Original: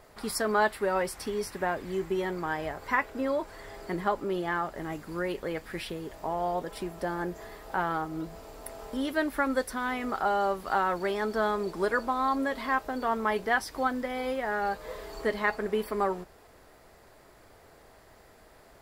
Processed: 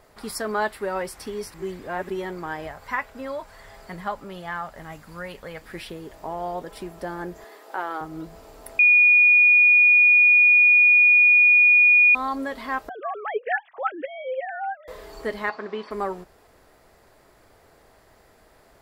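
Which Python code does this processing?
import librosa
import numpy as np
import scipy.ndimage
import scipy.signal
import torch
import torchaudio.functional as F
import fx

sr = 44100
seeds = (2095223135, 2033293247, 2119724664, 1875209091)

y = fx.peak_eq(x, sr, hz=350.0, db=-13.0, octaves=0.64, at=(2.67, 5.61))
y = fx.highpass(y, sr, hz=290.0, slope=24, at=(7.44, 8.01))
y = fx.sine_speech(y, sr, at=(12.89, 14.88))
y = fx.cabinet(y, sr, low_hz=220.0, low_slope=12, high_hz=5400.0, hz=(460.0, 1100.0, 4300.0), db=(-4, 8, 3), at=(15.49, 15.91))
y = fx.edit(y, sr, fx.reverse_span(start_s=1.54, length_s=0.56),
    fx.bleep(start_s=8.79, length_s=3.36, hz=2450.0, db=-11.5), tone=tone)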